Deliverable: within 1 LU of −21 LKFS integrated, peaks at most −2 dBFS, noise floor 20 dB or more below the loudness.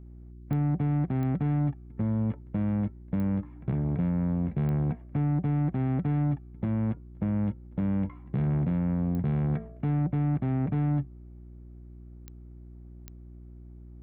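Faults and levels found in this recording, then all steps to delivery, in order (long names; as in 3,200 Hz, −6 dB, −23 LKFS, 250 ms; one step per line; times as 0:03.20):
number of clicks 7; mains hum 60 Hz; hum harmonics up to 360 Hz; level of the hum −45 dBFS; integrated loudness −29.0 LKFS; sample peak −18.5 dBFS; target loudness −21.0 LKFS
→ click removal
hum removal 60 Hz, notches 6
level +8 dB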